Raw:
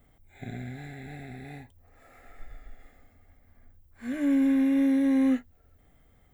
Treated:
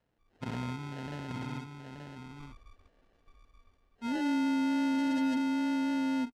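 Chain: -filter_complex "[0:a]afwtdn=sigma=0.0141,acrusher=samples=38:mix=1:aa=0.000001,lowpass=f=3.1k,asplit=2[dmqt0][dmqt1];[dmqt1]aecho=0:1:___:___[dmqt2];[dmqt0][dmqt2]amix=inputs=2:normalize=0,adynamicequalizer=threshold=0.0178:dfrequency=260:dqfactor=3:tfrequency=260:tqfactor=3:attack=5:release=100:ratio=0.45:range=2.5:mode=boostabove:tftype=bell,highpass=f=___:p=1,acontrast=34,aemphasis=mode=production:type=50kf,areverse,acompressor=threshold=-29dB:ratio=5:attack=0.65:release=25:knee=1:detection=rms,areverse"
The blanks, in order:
879, 0.501, 170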